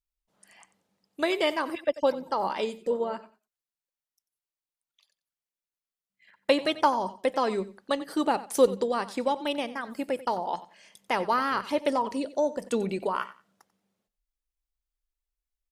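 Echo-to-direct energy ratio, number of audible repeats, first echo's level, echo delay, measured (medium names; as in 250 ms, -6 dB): -16.5 dB, 2, -16.5 dB, 91 ms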